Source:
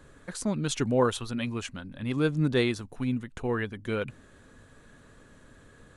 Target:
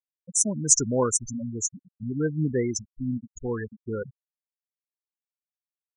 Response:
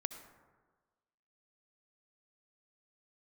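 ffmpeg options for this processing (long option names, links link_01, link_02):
-af "highshelf=frequency=4500:width_type=q:width=3:gain=12.5,afftfilt=real='re*gte(hypot(re,im),0.0891)':imag='im*gte(hypot(re,im),0.0891)':win_size=1024:overlap=0.75"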